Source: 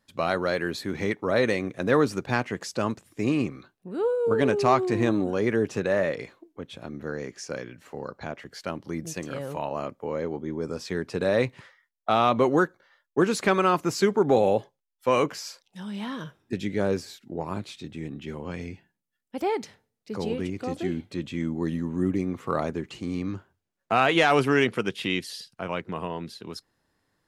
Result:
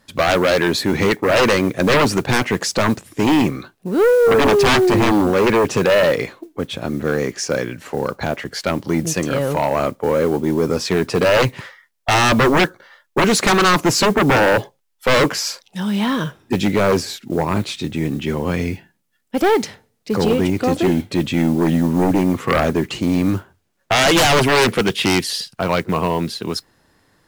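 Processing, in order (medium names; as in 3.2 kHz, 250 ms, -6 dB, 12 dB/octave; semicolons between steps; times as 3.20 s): sine folder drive 14 dB, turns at -7 dBFS; modulation noise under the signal 27 dB; trim -3 dB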